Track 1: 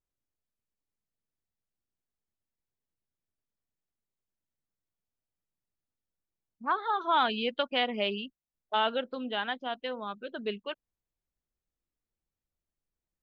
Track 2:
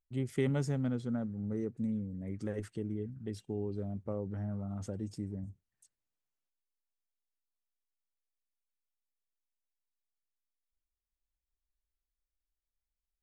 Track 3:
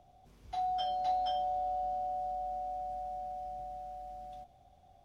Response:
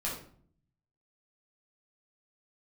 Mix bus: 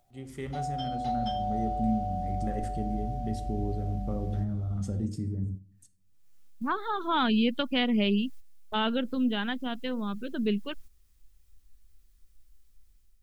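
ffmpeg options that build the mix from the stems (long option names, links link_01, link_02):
-filter_complex "[0:a]volume=-5dB,asplit=2[link_01][link_02];[1:a]bass=frequency=250:gain=-10,treble=frequency=4000:gain=3,acompressor=mode=upward:threshold=-46dB:ratio=2.5,volume=-6.5dB,asplit=2[link_03][link_04];[link_04]volume=-8dB[link_05];[2:a]volume=-1dB[link_06];[link_02]apad=whole_len=583142[link_07];[link_03][link_07]sidechaincompress=threshold=-40dB:ratio=8:attack=16:release=156[link_08];[3:a]atrim=start_sample=2205[link_09];[link_05][link_09]afir=irnorm=-1:irlink=0[link_10];[link_01][link_08][link_06][link_10]amix=inputs=4:normalize=0,dynaudnorm=framelen=760:gausssize=3:maxgain=5.5dB,agate=range=-8dB:threshold=-52dB:ratio=16:detection=peak,asubboost=boost=9.5:cutoff=210"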